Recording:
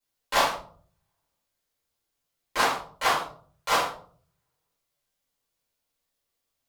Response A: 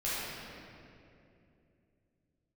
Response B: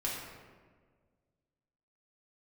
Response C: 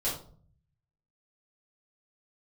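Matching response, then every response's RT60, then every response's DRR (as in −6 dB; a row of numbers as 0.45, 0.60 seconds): C; 2.7, 1.6, 0.50 seconds; −11.0, −5.5, −9.0 decibels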